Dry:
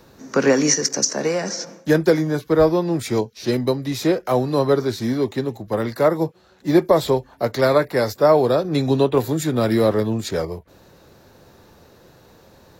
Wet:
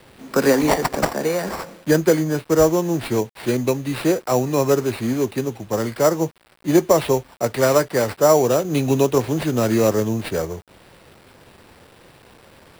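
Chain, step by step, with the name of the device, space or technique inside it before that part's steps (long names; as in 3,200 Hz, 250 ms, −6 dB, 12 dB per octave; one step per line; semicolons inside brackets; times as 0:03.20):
early 8-bit sampler (sample-rate reduction 6,500 Hz, jitter 0%; bit reduction 8 bits)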